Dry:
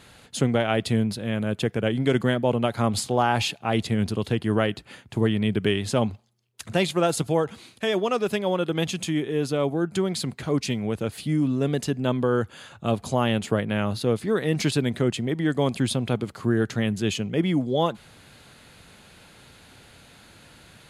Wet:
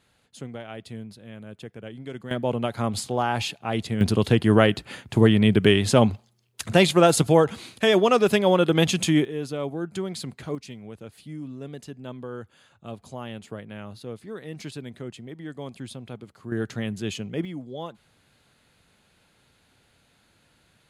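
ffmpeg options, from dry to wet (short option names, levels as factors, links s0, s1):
-af "asetnsamples=n=441:p=0,asendcmd='2.31 volume volume -3dB;4.01 volume volume 5.5dB;9.25 volume volume -5.5dB;10.55 volume volume -13.5dB;16.52 volume volume -5dB;17.45 volume volume -12.5dB',volume=0.178"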